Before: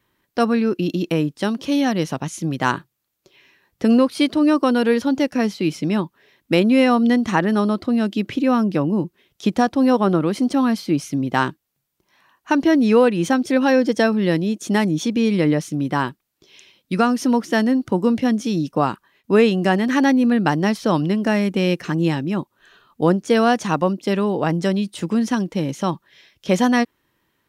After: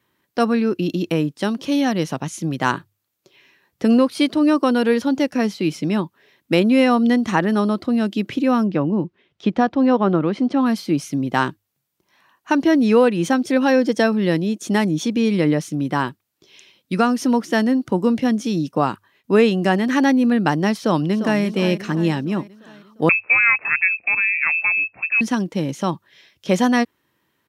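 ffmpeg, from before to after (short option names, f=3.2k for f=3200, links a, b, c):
-filter_complex "[0:a]asettb=1/sr,asplit=3[a][b][c];[a]atrim=end=8.674[d];[b]atrim=start=8.67:end=10.66,asetpts=PTS-STARTPTS,afade=t=in:d=0.004:c=qsin,afade=t=out:st=1.986:d=0.004:c=qsin,lowpass=3.2k[e];[c]atrim=start=10.656[f];[d][e]acrossfade=d=0.004:c1=hsin:c2=qsin[g];[g][f]acrossfade=d=0.004:c1=qsin:c2=hsin,asplit=2[h][i];[i]afade=t=in:st=20.77:d=0.01,afade=t=out:st=21.42:d=0.01,aecho=0:1:350|700|1050|1400|1750|2100:0.281838|0.155011|0.0852561|0.0468908|0.02579|0.0141845[j];[h][j]amix=inputs=2:normalize=0,asettb=1/sr,asplit=3[k][l][m];[k]atrim=end=23.094[n];[l]atrim=start=23.09:end=25.21,asetpts=PTS-STARTPTS,afade=t=in:d=0.004:c=qsin,afade=t=out:st=2.116:d=0.004:c=qsin,lowpass=f=2.4k:t=q:w=0.5098,lowpass=f=2.4k:t=q:w=0.6013,lowpass=f=2.4k:t=q:w=0.9,lowpass=f=2.4k:t=q:w=2.563,afreqshift=-2800[o];[m]atrim=start=25.206[p];[n][o]acrossfade=d=0.004:c1=hsin:c2=qsin[q];[q][p]acrossfade=d=0.004:c1=qsin:c2=hsin,highpass=77,bandreject=f=50:t=h:w=6,bandreject=f=100:t=h:w=6"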